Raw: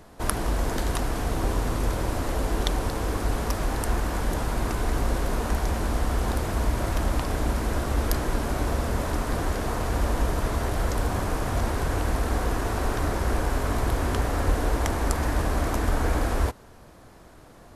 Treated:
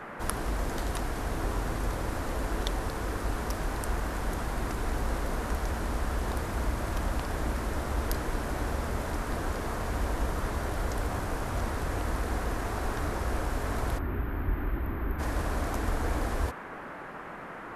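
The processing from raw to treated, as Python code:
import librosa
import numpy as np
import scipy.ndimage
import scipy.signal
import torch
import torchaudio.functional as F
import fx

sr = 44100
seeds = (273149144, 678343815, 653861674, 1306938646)

y = fx.spec_erase(x, sr, start_s=13.99, length_s=1.2, low_hz=410.0, high_hz=12000.0)
y = fx.dmg_noise_band(y, sr, seeds[0], low_hz=140.0, high_hz=1700.0, level_db=-36.0)
y = F.gain(torch.from_numpy(y), -6.0).numpy()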